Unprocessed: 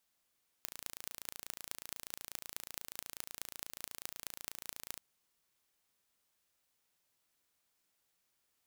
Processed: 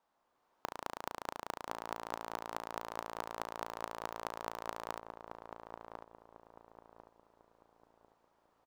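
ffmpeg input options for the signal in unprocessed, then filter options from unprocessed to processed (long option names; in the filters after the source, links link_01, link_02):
-f lavfi -i "aevalsrc='0.266*eq(mod(n,1564),0)*(0.5+0.5*eq(mod(n,9384),0))':duration=4.36:sample_rate=44100"
-filter_complex "[0:a]firequalizer=gain_entry='entry(130,0);entry(270,7);entry(940,15);entry(1400,6);entry(2200,-4);entry(10000,-18)':delay=0.05:min_phase=1,asplit=2[link_01][link_02];[link_02]adelay=1047,lowpass=frequency=890:poles=1,volume=-4dB,asplit=2[link_03][link_04];[link_04]adelay=1047,lowpass=frequency=890:poles=1,volume=0.44,asplit=2[link_05][link_06];[link_06]adelay=1047,lowpass=frequency=890:poles=1,volume=0.44,asplit=2[link_07][link_08];[link_08]adelay=1047,lowpass=frequency=890:poles=1,volume=0.44,asplit=2[link_09][link_10];[link_10]adelay=1047,lowpass=frequency=890:poles=1,volume=0.44,asplit=2[link_11][link_12];[link_12]adelay=1047,lowpass=frequency=890:poles=1,volume=0.44[link_13];[link_01][link_03][link_05][link_07][link_09][link_11][link_13]amix=inputs=7:normalize=0,dynaudnorm=framelen=150:gausssize=5:maxgain=4.5dB"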